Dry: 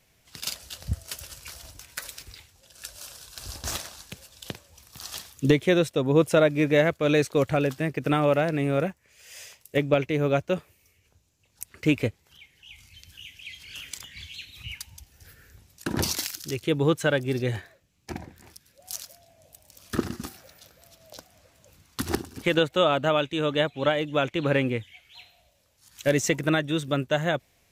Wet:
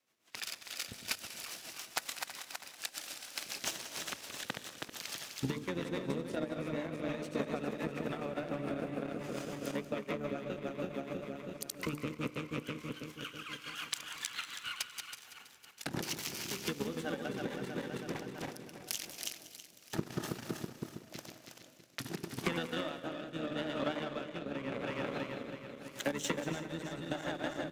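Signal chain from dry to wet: backward echo that repeats 162 ms, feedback 74%, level -4.5 dB; high-pass 250 Hz 24 dB/octave; hum notches 50/100/150/200/250/300/350/400/450/500 Hz; compression 10:1, threshold -34 dBFS, peak gain reduction 20.5 dB; rotary cabinet horn 7 Hz, later 0.85 Hz, at 17.79 s; power-law waveshaper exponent 1.4; feedback delay 188 ms, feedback 28%, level -15 dB; harmony voices -12 st -2 dB; on a send at -19 dB: reverberation, pre-delay 3 ms; on the sum: trim +6.5 dB

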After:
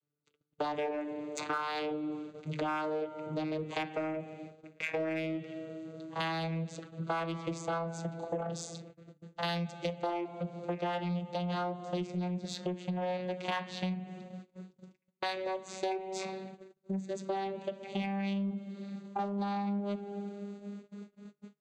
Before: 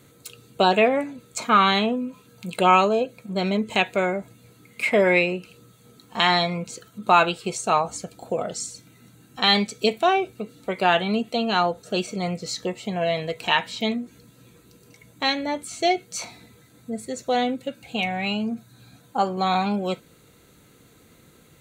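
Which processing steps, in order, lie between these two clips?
vocoder on a note that slides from D3, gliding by +6 st; bass shelf 310 Hz -7 dB; on a send: bucket-brigade echo 247 ms, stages 1024, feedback 80%, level -23.5 dB; on the sum: spring tank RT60 1.5 s, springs 42 ms, chirp 45 ms, DRR 16.5 dB; gate -50 dBFS, range -35 dB; de-hum 150.3 Hz, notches 2; in parallel at -3.5 dB: saturation -28.5 dBFS, distortion -7 dB; on the sum: compression 5:1, threshold -33 dBFS, peak gain reduction 15 dB

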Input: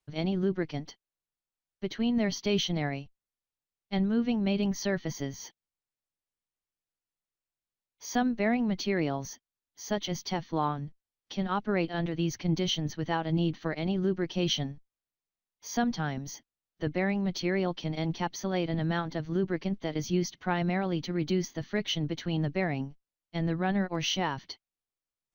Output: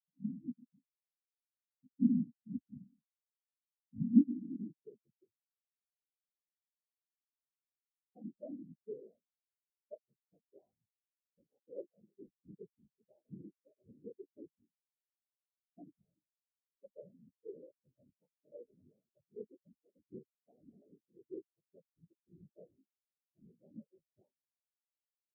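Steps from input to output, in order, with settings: whisper effect; low-pass sweep 240 Hz -> 560 Hz, 4.00–5.26 s; spectral contrast expander 4:1; trim -2.5 dB

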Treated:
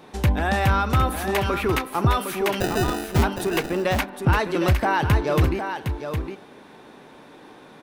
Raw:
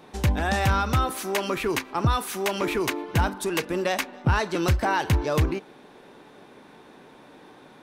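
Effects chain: dynamic bell 6.4 kHz, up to -7 dB, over -48 dBFS, Q 1; 2.60–3.23 s: sample-rate reducer 1.1 kHz, jitter 0%; delay 760 ms -7.5 dB; trim +2.5 dB

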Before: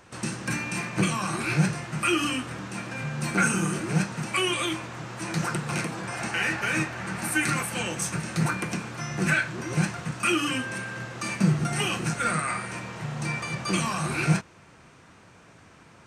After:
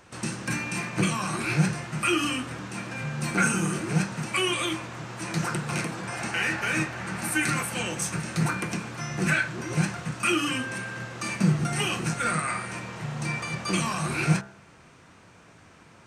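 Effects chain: de-hum 66.4 Hz, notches 29

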